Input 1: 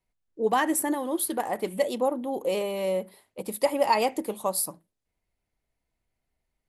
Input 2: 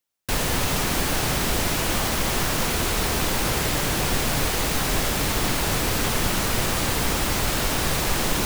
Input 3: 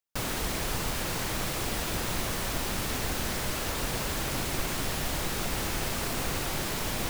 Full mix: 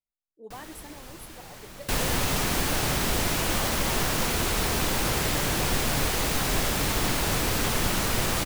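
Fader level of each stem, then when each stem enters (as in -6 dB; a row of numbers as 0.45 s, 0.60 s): -19.5 dB, -2.5 dB, -13.5 dB; 0.00 s, 1.60 s, 0.35 s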